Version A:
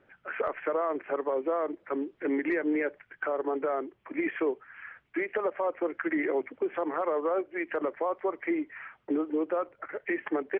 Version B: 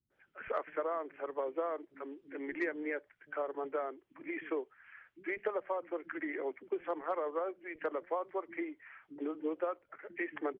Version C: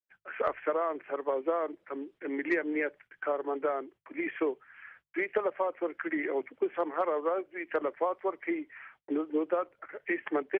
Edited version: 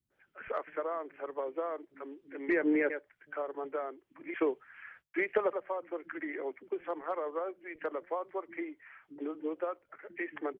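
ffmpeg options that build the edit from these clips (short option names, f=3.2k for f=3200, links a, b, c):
-filter_complex "[1:a]asplit=3[a][b][c];[a]atrim=end=2.492[d];[0:a]atrim=start=2.488:end=2.902[e];[b]atrim=start=2.898:end=4.342[f];[2:a]atrim=start=4.338:end=5.532[g];[c]atrim=start=5.528[h];[d][e]acrossfade=d=0.004:c1=hsin:c2=hsin[i];[i][f]acrossfade=d=0.004:c1=hsin:c2=hsin[j];[j][g]acrossfade=d=0.004:c1=hsin:c2=hsin[k];[k][h]acrossfade=d=0.004:c1=hsin:c2=hsin"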